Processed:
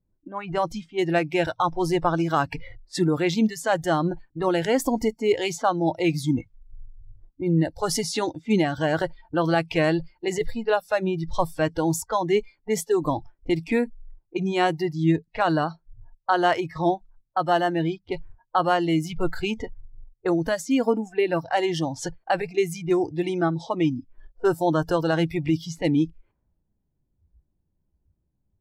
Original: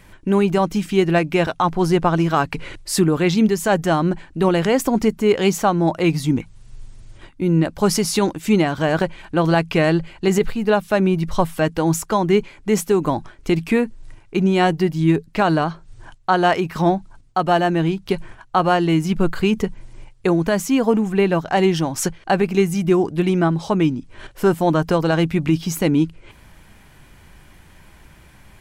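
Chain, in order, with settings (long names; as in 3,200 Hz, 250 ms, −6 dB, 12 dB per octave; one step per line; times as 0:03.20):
noise reduction from a noise print of the clip's start 22 dB
low-pass that shuts in the quiet parts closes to 390 Hz, open at −17 dBFS
level −4 dB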